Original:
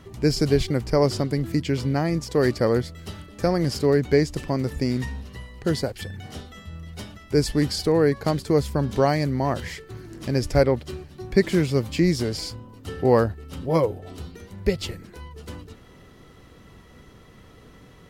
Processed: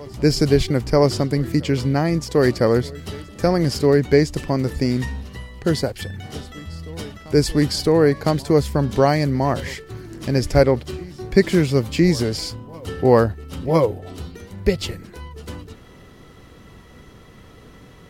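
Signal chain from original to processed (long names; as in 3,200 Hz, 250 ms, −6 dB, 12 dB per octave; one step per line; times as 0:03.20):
backwards echo 1,007 ms −22.5 dB
level +4 dB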